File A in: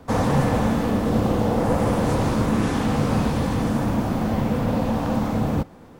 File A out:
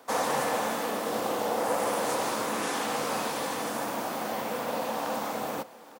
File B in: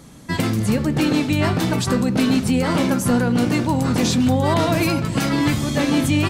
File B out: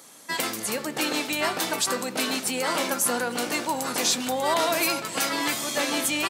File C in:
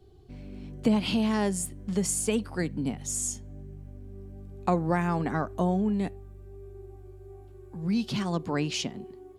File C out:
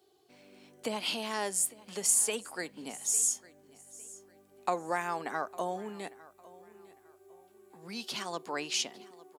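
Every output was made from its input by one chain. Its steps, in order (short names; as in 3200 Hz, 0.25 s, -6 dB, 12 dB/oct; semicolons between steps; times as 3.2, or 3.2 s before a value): HPF 530 Hz 12 dB/oct; high shelf 6500 Hz +9.5 dB; feedback echo 0.854 s, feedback 31%, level -20.5 dB; gain -2 dB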